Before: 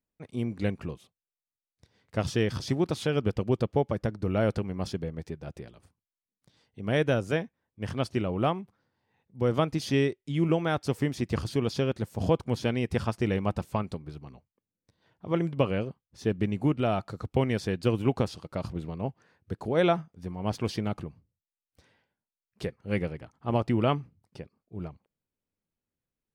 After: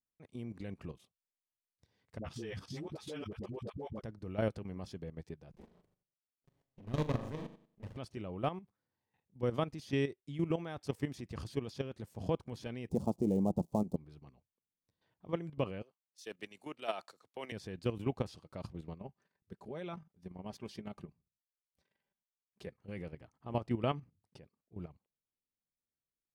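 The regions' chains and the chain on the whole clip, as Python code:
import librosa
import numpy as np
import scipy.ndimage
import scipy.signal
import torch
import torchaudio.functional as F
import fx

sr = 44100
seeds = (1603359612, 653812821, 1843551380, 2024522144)

y = fx.chain(x, sr, fx.dispersion(late='highs', ms=67.0, hz=480.0),
    fx.ensemble(), at=(2.18, 4.01))
y = fx.chain(y, sr, fx.env_flanger(rest_ms=7.7, full_db=-24.5),
    fx.room_flutter(wall_m=6.8, rt60_s=0.47),
    fx.running_max(window=33), at=(5.5, 7.97))
y = fx.chain(y, sr, fx.dead_time(dead_ms=0.08),
    fx.curve_eq(hz=(120.0, 170.0, 840.0, 1600.0, 7000.0), db=(0, 12, 6, -23, 1)), at=(12.89, 13.96))
y = fx.chain(y, sr, fx.highpass(hz=490.0, slope=12),
    fx.high_shelf(hz=2700.0, db=10.5),
    fx.band_widen(depth_pct=100), at=(15.82, 17.52))
y = fx.chain(y, sr, fx.comb(ms=5.1, depth=0.46),
    fx.level_steps(step_db=9), at=(18.99, 22.67))
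y = fx.notch(y, sr, hz=1400.0, q=17.0)
y = fx.level_steps(y, sr, step_db=12)
y = F.gain(torch.from_numpy(y), -6.0).numpy()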